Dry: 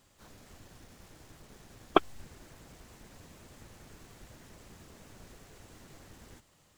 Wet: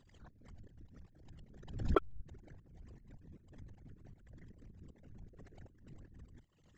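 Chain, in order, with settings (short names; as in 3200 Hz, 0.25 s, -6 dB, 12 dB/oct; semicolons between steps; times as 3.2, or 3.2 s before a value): formant sharpening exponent 3; band shelf 3200 Hz +10.5 dB 2.4 oct; sample leveller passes 1; step gate "x.x..xx." 156 bpm -12 dB; backwards sustainer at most 81 dB/s; gain +2 dB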